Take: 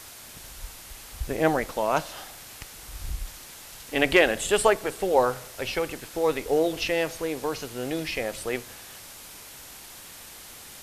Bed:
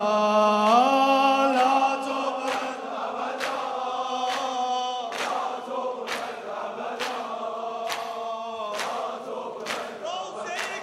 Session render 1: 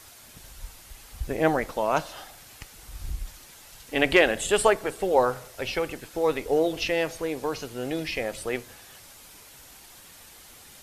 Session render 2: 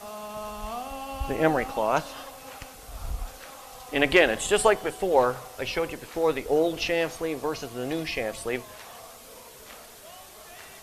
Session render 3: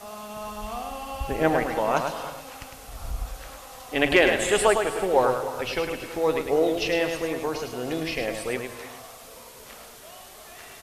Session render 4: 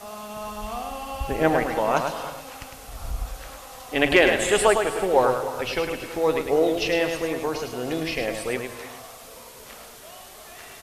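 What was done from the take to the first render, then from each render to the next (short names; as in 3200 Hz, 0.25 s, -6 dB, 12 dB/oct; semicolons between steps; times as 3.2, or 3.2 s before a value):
denoiser 6 dB, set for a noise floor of -45 dBFS
add bed -17 dB
echo 0.105 s -6 dB; non-linear reverb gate 0.35 s rising, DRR 11 dB
gain +1.5 dB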